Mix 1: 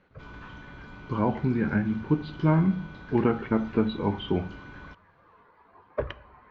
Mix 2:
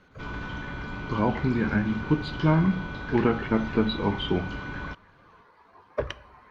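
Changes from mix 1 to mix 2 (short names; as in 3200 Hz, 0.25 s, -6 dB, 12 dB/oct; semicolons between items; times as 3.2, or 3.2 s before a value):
speech: remove air absorption 290 m; background +9.5 dB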